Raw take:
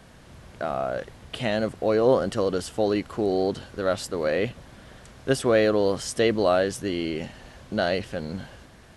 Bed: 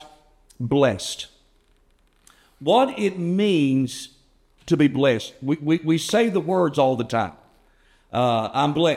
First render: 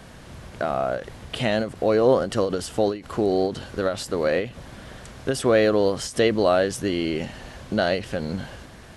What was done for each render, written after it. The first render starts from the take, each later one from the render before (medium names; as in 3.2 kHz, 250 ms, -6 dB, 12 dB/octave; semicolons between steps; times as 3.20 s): in parallel at 0 dB: compression, threshold -30 dBFS, peak gain reduction 14.5 dB; on the sum: endings held to a fixed fall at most 150 dB/s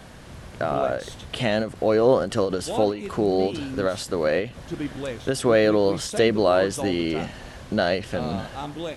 add bed -13 dB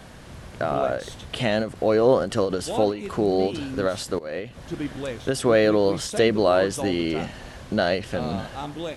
4.19–4.68 s: fade in, from -19.5 dB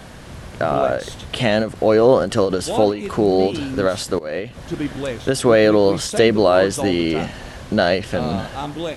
trim +5.5 dB; peak limiter -3 dBFS, peak gain reduction 2 dB